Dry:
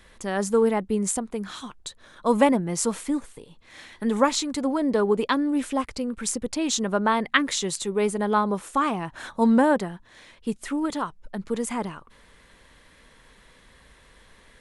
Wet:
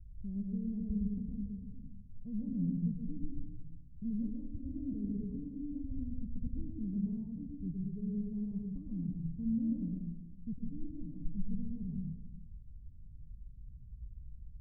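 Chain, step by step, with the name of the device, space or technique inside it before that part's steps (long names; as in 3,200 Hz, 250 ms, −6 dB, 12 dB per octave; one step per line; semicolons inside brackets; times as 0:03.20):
club heard from the street (brickwall limiter −14 dBFS, peak gain reduction 10.5 dB; low-pass filter 130 Hz 24 dB per octave; convolution reverb RT60 1.1 s, pre-delay 104 ms, DRR −1 dB)
level +6.5 dB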